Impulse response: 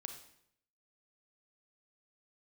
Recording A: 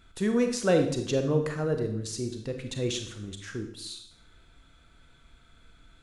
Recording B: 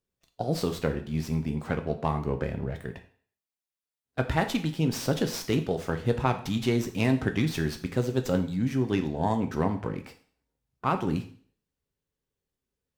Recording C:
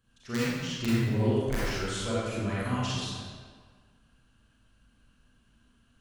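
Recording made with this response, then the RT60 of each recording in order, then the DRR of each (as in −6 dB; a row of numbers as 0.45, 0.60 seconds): A; 0.70, 0.50, 1.6 seconds; 5.0, 6.0, −9.0 decibels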